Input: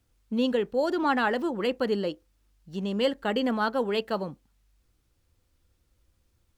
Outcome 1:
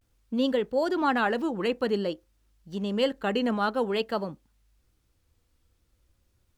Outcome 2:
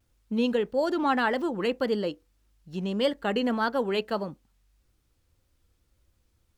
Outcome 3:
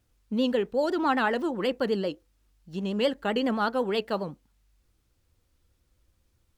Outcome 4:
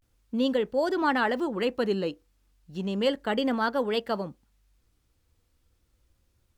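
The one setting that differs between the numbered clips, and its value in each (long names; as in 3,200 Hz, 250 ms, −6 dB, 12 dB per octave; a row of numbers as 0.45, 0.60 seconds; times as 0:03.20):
pitch vibrato, speed: 0.5, 1.7, 7.9, 0.33 Hertz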